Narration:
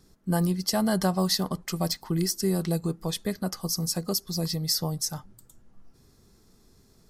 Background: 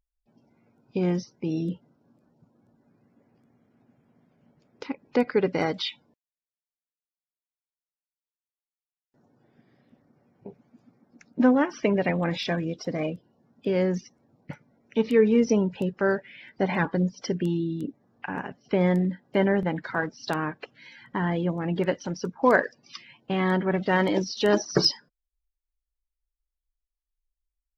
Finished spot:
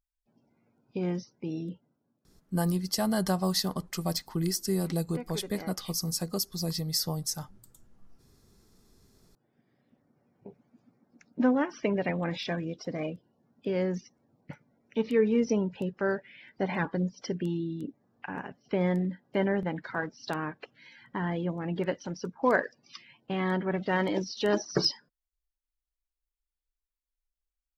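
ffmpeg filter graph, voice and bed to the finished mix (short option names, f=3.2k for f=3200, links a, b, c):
-filter_complex "[0:a]adelay=2250,volume=-3dB[a];[1:a]volume=6dB,afade=t=out:st=1.46:d=0.78:silence=0.281838,afade=t=in:st=8.9:d=1.42:silence=0.251189[b];[a][b]amix=inputs=2:normalize=0"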